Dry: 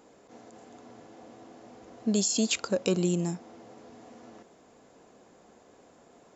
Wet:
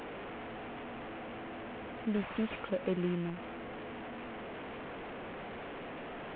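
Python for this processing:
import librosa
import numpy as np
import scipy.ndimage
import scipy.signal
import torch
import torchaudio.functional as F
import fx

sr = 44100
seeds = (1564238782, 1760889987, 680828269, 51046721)

y = fx.delta_mod(x, sr, bps=16000, step_db=-31.0)
y = F.gain(torch.from_numpy(y), -6.5).numpy()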